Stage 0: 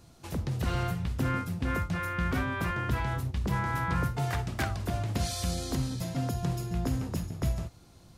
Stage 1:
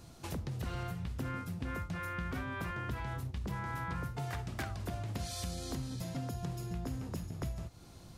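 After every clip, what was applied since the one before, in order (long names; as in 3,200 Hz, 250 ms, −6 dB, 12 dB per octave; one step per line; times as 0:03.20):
downward compressor 3 to 1, threshold −41 dBFS, peak gain reduction 13 dB
level +2 dB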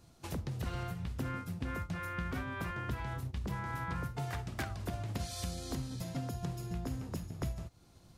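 expander for the loud parts 1.5 to 1, over −54 dBFS
level +2 dB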